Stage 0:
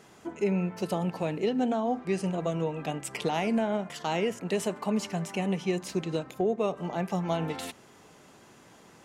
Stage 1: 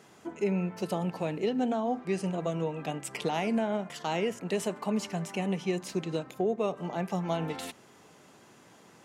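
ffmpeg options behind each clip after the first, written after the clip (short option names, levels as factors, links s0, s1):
-af "highpass=86,volume=0.841"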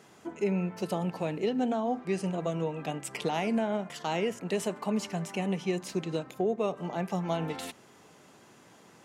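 -af anull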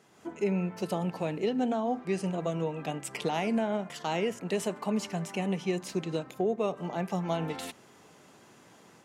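-af "dynaudnorm=f=120:g=3:m=2,volume=0.501"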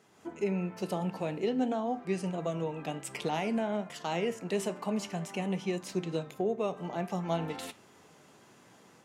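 -af "flanger=delay=9.1:depth=7.7:regen=80:speed=0.52:shape=triangular,volume=1.33"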